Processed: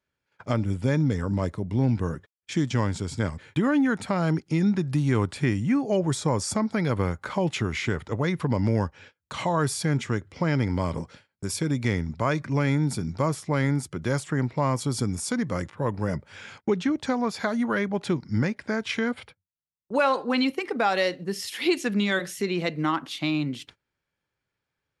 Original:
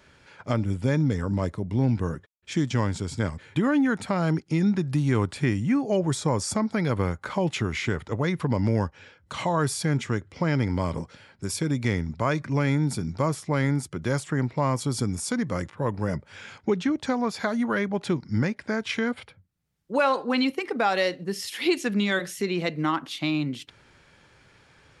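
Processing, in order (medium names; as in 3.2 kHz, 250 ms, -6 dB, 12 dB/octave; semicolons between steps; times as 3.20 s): gate -47 dBFS, range -27 dB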